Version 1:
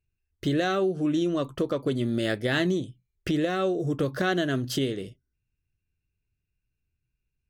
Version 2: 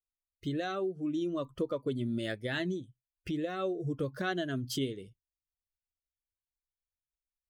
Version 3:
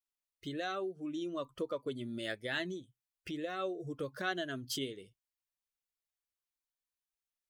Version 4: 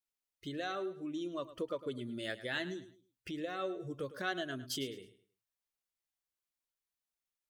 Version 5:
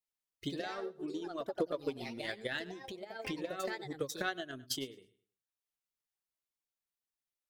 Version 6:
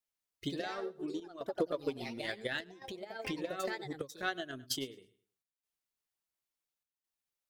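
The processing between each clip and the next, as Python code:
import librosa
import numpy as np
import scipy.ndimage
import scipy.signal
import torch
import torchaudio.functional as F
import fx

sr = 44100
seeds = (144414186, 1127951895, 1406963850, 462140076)

y1 = fx.bin_expand(x, sr, power=1.5)
y1 = fx.rider(y1, sr, range_db=10, speed_s=0.5)
y1 = y1 * librosa.db_to_amplitude(-5.0)
y2 = fx.low_shelf(y1, sr, hz=320.0, db=-12.0)
y3 = fx.echo_feedback(y2, sr, ms=106, feedback_pct=30, wet_db=-14.5)
y3 = y3 * librosa.db_to_amplitude(-1.0)
y4 = fx.transient(y3, sr, attack_db=11, sustain_db=-5)
y4 = fx.echo_pitch(y4, sr, ms=135, semitones=3, count=2, db_per_echo=-6.0)
y4 = y4 * librosa.db_to_amplitude(-4.5)
y5 = fx.chopper(y4, sr, hz=0.71, depth_pct=65, duty_pct=85)
y5 = y5 * librosa.db_to_amplitude(1.0)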